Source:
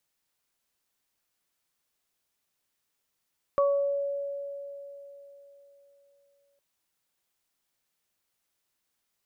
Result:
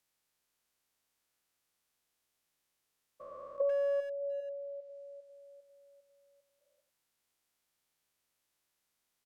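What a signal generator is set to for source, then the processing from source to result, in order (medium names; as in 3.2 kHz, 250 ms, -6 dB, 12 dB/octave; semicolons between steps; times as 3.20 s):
additive tone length 3.01 s, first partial 563 Hz, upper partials -4 dB, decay 3.72 s, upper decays 0.51 s, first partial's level -20 dB
spectrogram pixelated in time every 400 ms; low-pass that closes with the level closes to 610 Hz, closed at -30 dBFS; speakerphone echo 90 ms, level -8 dB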